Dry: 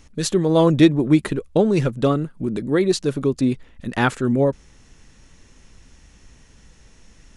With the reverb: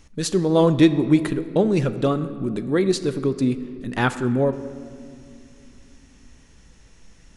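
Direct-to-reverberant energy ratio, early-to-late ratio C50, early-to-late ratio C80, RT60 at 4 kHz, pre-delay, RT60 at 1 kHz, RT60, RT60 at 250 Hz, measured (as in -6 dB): 11.5 dB, 13.5 dB, 14.5 dB, 1.4 s, 6 ms, 2.1 s, 2.4 s, 3.8 s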